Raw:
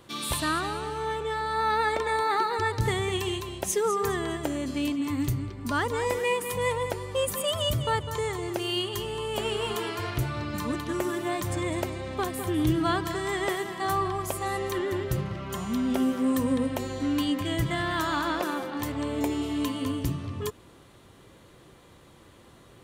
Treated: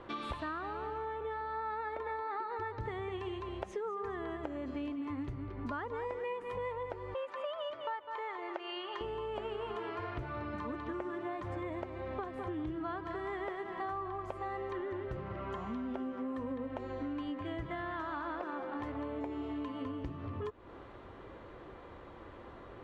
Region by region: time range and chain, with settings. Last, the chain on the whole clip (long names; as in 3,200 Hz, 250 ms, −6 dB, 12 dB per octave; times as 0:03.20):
0:07.14–0:09.01: band-pass filter 670–4,400 Hz + comb filter 3.3 ms, depth 31%
whole clip: low-pass filter 1,600 Hz 12 dB per octave; parametric band 150 Hz −11 dB 1.4 octaves; downward compressor 6 to 1, threshold −44 dBFS; level +6.5 dB